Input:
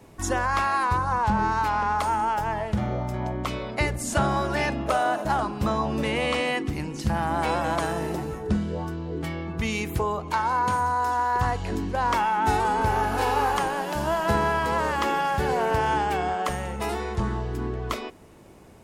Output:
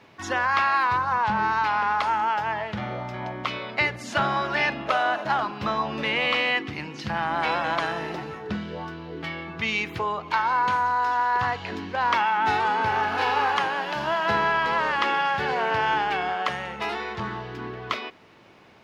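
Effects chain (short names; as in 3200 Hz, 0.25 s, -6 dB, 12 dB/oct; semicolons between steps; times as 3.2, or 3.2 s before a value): HPF 95 Hz 24 dB/oct; tilt shelf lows -9.5 dB, about 1100 Hz; bit-crush 9-bit; air absorption 280 m; gain +3.5 dB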